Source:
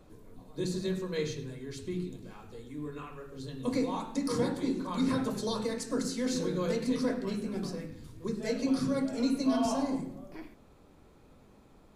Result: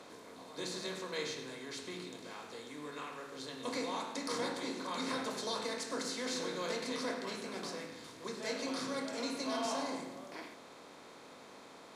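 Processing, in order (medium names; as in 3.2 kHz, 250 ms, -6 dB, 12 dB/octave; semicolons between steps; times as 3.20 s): spectral levelling over time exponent 0.6; high-pass 1.4 kHz 6 dB/octave; treble shelf 7.4 kHz -10.5 dB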